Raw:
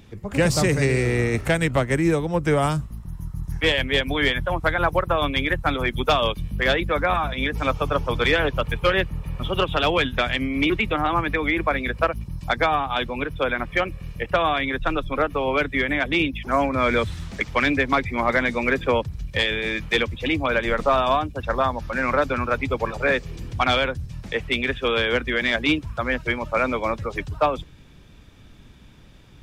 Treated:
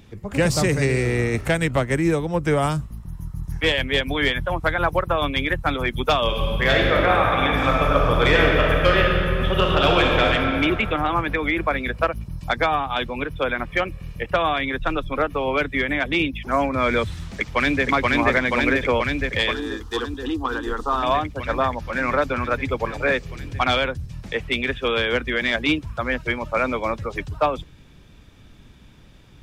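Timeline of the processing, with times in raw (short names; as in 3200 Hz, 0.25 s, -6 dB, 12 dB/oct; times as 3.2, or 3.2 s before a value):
6.24–10.32 reverb throw, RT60 2.8 s, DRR -2 dB
17.11–17.85 echo throw 0.48 s, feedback 80%, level -0.5 dB
19.53–21.03 fixed phaser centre 600 Hz, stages 6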